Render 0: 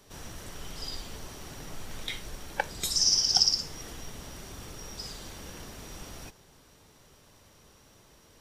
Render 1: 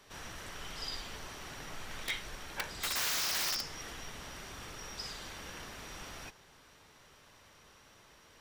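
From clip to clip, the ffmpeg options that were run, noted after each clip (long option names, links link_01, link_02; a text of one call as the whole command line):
ffmpeg -i in.wav -af "aeval=exprs='(mod(17.8*val(0)+1,2)-1)/17.8':channel_layout=same,equalizer=frequency=1800:width=0.44:gain=10,volume=-6.5dB" out.wav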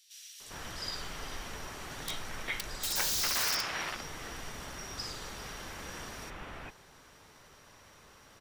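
ffmpeg -i in.wav -filter_complex "[0:a]acrossover=split=3100[link_01][link_02];[link_01]adelay=400[link_03];[link_03][link_02]amix=inputs=2:normalize=0,volume=3.5dB" out.wav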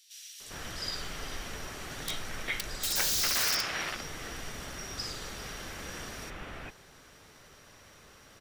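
ffmpeg -i in.wav -af "equalizer=frequency=950:width=2.8:gain=-5,volume=2.5dB" out.wav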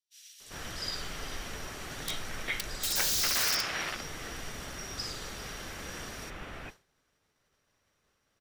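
ffmpeg -i in.wav -af "agate=range=-33dB:threshold=-42dB:ratio=3:detection=peak" out.wav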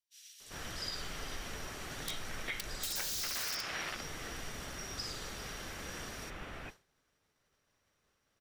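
ffmpeg -i in.wav -af "acompressor=threshold=-32dB:ratio=6,volume=-2.5dB" out.wav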